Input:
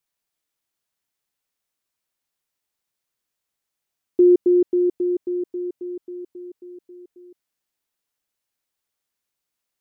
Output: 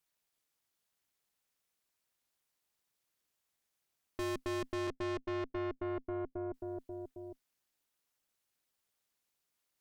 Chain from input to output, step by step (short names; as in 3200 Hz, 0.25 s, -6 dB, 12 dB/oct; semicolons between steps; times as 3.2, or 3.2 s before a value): 4.87–6.54 steep low-pass 560 Hz 96 dB/oct; tube stage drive 38 dB, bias 0.7; AM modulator 260 Hz, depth 60%; gain +6 dB